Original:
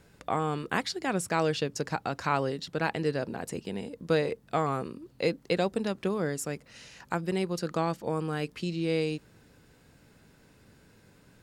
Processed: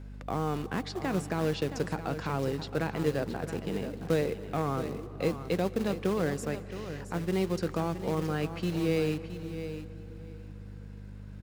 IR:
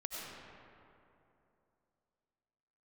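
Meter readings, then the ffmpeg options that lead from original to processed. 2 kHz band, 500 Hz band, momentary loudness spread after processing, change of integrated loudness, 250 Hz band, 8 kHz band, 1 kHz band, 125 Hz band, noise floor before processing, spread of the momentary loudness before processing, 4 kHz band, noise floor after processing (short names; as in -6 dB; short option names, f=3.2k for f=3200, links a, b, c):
-4.0 dB, -0.5 dB, 15 LU, -1.0 dB, +1.0 dB, -5.0 dB, -4.5 dB, +2.0 dB, -60 dBFS, 8 LU, -4.0 dB, -44 dBFS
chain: -filter_complex "[0:a]lowpass=f=3k:p=1,acrossover=split=400[a][b];[a]acrusher=bits=3:mode=log:mix=0:aa=0.000001[c];[b]alimiter=level_in=1.5dB:limit=-24dB:level=0:latency=1:release=253,volume=-1.5dB[d];[c][d]amix=inputs=2:normalize=0,aeval=exprs='val(0)+0.00708*(sin(2*PI*50*n/s)+sin(2*PI*2*50*n/s)/2+sin(2*PI*3*50*n/s)/3+sin(2*PI*4*50*n/s)/4+sin(2*PI*5*50*n/s)/5)':c=same,aecho=1:1:670|1340:0.282|0.0423,asplit=2[e][f];[1:a]atrim=start_sample=2205,asetrate=27342,aresample=44100[g];[f][g]afir=irnorm=-1:irlink=0,volume=-18dB[h];[e][h]amix=inputs=2:normalize=0"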